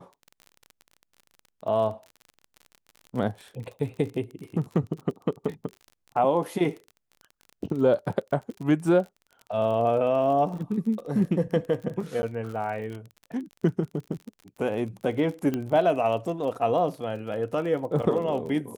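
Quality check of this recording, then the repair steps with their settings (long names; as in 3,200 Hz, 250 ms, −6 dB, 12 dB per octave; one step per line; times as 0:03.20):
surface crackle 37 per second −35 dBFS
0:12.22–0:12.23: drop-out 10 ms
0:15.54: click −16 dBFS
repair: click removal
repair the gap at 0:12.22, 10 ms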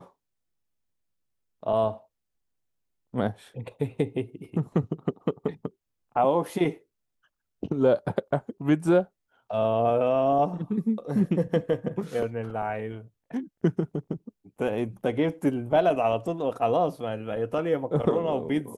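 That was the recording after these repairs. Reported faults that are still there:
0:15.54: click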